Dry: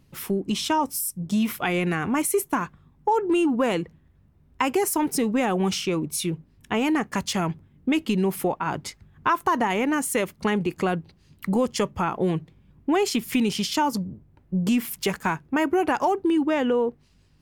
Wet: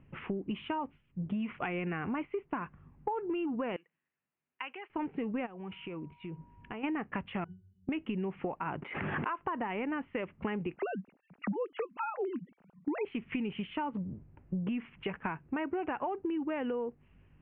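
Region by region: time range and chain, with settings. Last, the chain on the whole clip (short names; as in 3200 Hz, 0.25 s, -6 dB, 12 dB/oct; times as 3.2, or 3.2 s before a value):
3.76–4.9 HPF 140 Hz + differentiator
5.45–6.83 compressor 10:1, threshold -37 dBFS + whine 960 Hz -61 dBFS
7.44–7.89 bell 800 Hz -12 dB 1.9 oct + octave resonator F#, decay 0.22 s
8.82–9.39 block floating point 7-bit + HPF 350 Hz + backwards sustainer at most 43 dB/s
10.76–13.05 sine-wave speech + notch 1100 Hz, Q 10
whole clip: compressor 5:1, threshold -32 dBFS; steep low-pass 2900 Hz 72 dB/oct; gain -1 dB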